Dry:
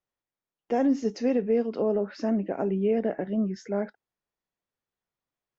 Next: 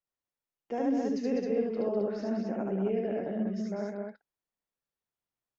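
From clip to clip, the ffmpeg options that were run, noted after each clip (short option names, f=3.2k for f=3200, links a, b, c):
-af "aecho=1:1:72.89|201.2|265.3:0.891|0.562|0.631,volume=-8.5dB"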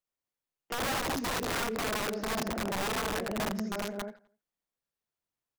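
-filter_complex "[0:a]aeval=exprs='(mod(22.4*val(0)+1,2)-1)/22.4':c=same,asplit=2[a][b];[b]adelay=85,lowpass=f=4.9k:p=1,volume=-21.5dB,asplit=2[c][d];[d]adelay=85,lowpass=f=4.9k:p=1,volume=0.46,asplit=2[e][f];[f]adelay=85,lowpass=f=4.9k:p=1,volume=0.46[g];[a][c][e][g]amix=inputs=4:normalize=0"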